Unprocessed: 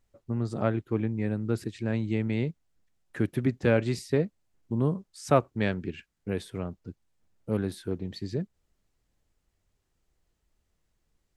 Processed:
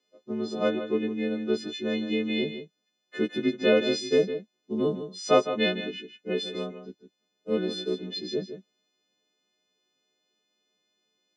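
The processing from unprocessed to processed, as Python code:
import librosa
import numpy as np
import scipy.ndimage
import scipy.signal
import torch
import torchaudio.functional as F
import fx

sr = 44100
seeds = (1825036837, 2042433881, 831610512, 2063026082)

y = fx.freq_snap(x, sr, grid_st=3)
y = fx.cabinet(y, sr, low_hz=200.0, low_slope=24, high_hz=5300.0, hz=(200.0, 410.0, 590.0, 880.0, 1600.0, 3500.0), db=(4, 8, 4, -8, -6, 8))
y = y + 10.0 ** (-10.5 / 20.0) * np.pad(y, (int(158 * sr / 1000.0), 0))[:len(y)]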